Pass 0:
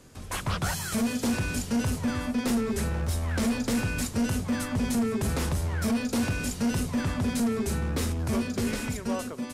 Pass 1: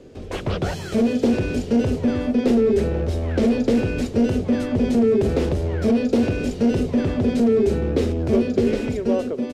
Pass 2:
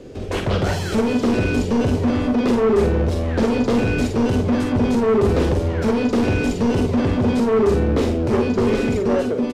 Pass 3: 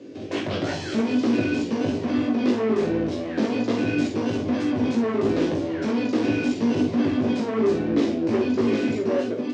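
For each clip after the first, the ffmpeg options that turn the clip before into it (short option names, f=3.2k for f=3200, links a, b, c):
-af "firequalizer=gain_entry='entry(170,0);entry(400,12);entry(1000,-7);entry(2800,-2);entry(10000,-19)':delay=0.05:min_phase=1,volume=4.5dB"
-af "asoftclip=type=tanh:threshold=-20dB,aecho=1:1:45|55:0.447|0.316,volume=5.5dB"
-af "flanger=delay=17.5:depth=2:speed=3,highpass=f=120:w=0.5412,highpass=f=120:w=1.3066,equalizer=f=130:t=q:w=4:g=-6,equalizer=f=190:t=q:w=4:g=-7,equalizer=f=300:t=q:w=4:g=8,equalizer=f=450:t=q:w=4:g=-6,equalizer=f=870:t=q:w=4:g=-5,equalizer=f=1.3k:t=q:w=4:g=-5,lowpass=f=6.6k:w=0.5412,lowpass=f=6.6k:w=1.3066"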